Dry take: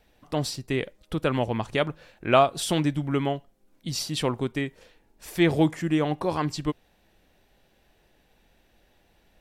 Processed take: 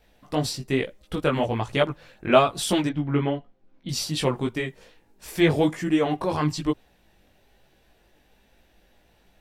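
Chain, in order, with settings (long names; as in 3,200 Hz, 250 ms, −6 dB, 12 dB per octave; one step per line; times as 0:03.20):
multi-voice chorus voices 2, 1.1 Hz, delay 18 ms, depth 3 ms
0:02.89–0:03.89: high-frequency loss of the air 210 metres
level +5 dB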